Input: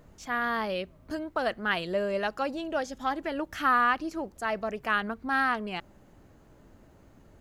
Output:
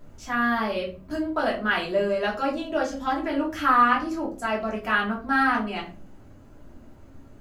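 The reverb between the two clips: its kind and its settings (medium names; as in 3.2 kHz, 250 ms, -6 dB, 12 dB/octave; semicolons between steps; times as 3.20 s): simulated room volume 220 m³, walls furnished, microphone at 2.9 m; trim -2 dB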